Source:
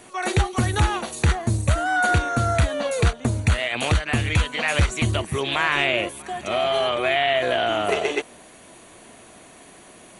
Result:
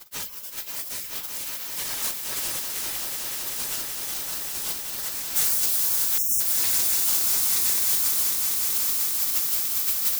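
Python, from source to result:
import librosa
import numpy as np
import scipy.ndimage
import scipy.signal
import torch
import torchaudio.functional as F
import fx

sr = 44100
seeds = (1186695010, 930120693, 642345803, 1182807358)

y = fx.octave_divider(x, sr, octaves=2, level_db=3.0)
y = fx.recorder_agc(y, sr, target_db=-10.0, rise_db_per_s=15.0, max_gain_db=30)
y = fx.tilt_eq(y, sr, slope=4.5)
y = fx.rev_fdn(y, sr, rt60_s=0.83, lf_ratio=0.8, hf_ratio=0.75, size_ms=43.0, drr_db=-7.0)
y = 10.0 ** (-17.5 / 20.0) * np.tanh(y / 10.0 ** (-17.5 / 20.0))
y = fx.dereverb_blind(y, sr, rt60_s=1.7)
y = fx.quant_dither(y, sr, seeds[0], bits=6, dither='triangular')
y = fx.spec_gate(y, sr, threshold_db=-25, keep='weak')
y = fx.echo_swell(y, sr, ms=190, loudest=5, wet_db=-8.5)
y = fx.spec_erase(y, sr, start_s=6.18, length_s=0.22, low_hz=270.0, high_hz=5300.0)
y = np.sign(y) * np.maximum(np.abs(y) - 10.0 ** (-54.0 / 20.0), 0.0)
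y = fx.high_shelf(y, sr, hz=5200.0, db=fx.steps((0.0, 3.5), (5.35, 12.0)))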